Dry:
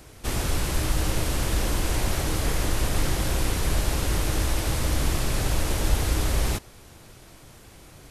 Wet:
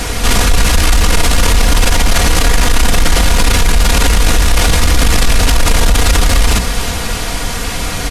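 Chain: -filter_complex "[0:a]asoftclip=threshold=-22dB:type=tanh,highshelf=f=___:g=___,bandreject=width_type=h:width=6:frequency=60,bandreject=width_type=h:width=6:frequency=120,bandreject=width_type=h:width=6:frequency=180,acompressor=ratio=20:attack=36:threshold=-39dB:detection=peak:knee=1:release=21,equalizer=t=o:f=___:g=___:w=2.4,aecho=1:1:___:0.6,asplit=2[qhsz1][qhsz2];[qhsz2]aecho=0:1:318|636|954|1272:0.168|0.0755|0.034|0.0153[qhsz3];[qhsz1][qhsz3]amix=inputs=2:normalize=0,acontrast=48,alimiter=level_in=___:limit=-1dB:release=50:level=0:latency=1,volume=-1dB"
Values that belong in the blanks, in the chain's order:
11k, -10.5, 330, -6.5, 4.2, 26.5dB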